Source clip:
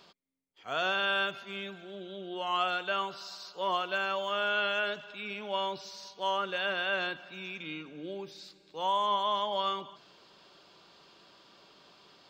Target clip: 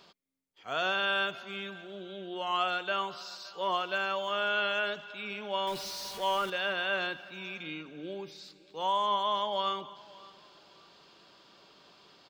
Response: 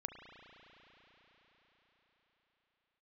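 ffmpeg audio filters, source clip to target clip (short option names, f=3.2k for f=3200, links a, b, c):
-filter_complex "[0:a]asettb=1/sr,asplit=3[a][b][c];[a]atrim=end=5.674[d];[b]atrim=start=5.67:end=6.5,asetpts=PTS-STARTPTS,afade=t=in:d=0.004:c=qsin,afade=t=out:st=0.826:d=0.004:c=qsin,aeval=exprs='val(0)+0.5*0.0126*sgn(val(0))':c=same[e];[c]atrim=start=6.496[f];[d][e]acrossfade=d=0.004:c1=hsin:c2=qsin[g];[g][f]acrossfade=d=0.004:c1=qsin:c2=hsin,asplit=2[h][i];[i]aecho=0:1:568|1136:0.0794|0.023[j];[h][j]amix=inputs=2:normalize=0"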